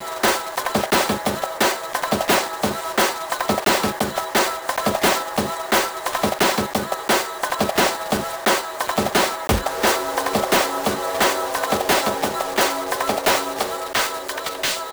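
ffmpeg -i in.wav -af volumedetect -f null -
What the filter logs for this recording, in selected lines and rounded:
mean_volume: -21.5 dB
max_volume: -7.3 dB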